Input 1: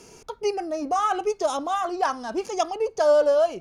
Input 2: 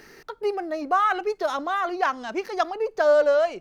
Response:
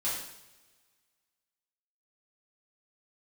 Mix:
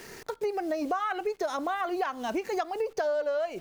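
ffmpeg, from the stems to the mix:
-filter_complex "[0:a]highshelf=frequency=3900:gain=-4.5,acrusher=bits=7:mix=0:aa=0.000001,volume=-0.5dB[link_01];[1:a]equalizer=frequency=61:width=0.3:gain=-8,bandreject=frequency=1200:width=22,volume=1dB,asplit=2[link_02][link_03];[link_03]apad=whole_len=159043[link_04];[link_01][link_04]sidechaincompress=threshold=-28dB:ratio=8:attack=7.5:release=224[link_05];[link_05][link_02]amix=inputs=2:normalize=0,acompressor=threshold=-27dB:ratio=6"

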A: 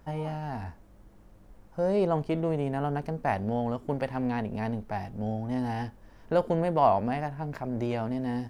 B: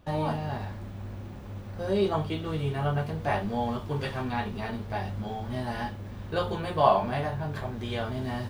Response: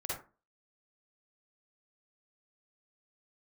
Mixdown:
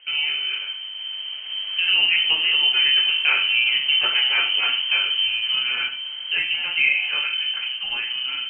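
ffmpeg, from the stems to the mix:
-filter_complex "[0:a]tiltshelf=frequency=970:gain=6,acompressor=threshold=-31dB:ratio=3,volume=1.5dB[link_01];[1:a]highpass=82,volume=1dB,asplit=2[link_02][link_03];[link_03]volume=-10.5dB[link_04];[2:a]atrim=start_sample=2205[link_05];[link_04][link_05]afir=irnorm=-1:irlink=0[link_06];[link_01][link_02][link_06]amix=inputs=3:normalize=0,dynaudnorm=framelen=430:gausssize=7:maxgain=11.5dB,lowpass=frequency=2700:width_type=q:width=0.5098,lowpass=frequency=2700:width_type=q:width=0.6013,lowpass=frequency=2700:width_type=q:width=0.9,lowpass=frequency=2700:width_type=q:width=2.563,afreqshift=-3200,acompressor=threshold=-16dB:ratio=3"

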